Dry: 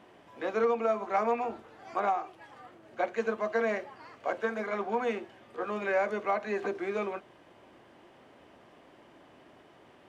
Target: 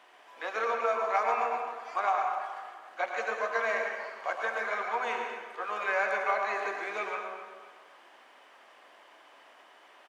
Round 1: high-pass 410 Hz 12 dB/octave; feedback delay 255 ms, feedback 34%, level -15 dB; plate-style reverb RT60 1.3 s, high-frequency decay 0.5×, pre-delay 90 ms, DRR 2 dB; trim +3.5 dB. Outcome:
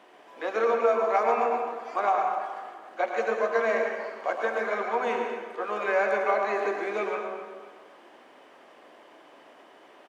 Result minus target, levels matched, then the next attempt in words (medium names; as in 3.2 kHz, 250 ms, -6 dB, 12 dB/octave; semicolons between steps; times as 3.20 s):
500 Hz band +4.0 dB
high-pass 890 Hz 12 dB/octave; feedback delay 255 ms, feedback 34%, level -15 dB; plate-style reverb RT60 1.3 s, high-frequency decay 0.5×, pre-delay 90 ms, DRR 2 dB; trim +3.5 dB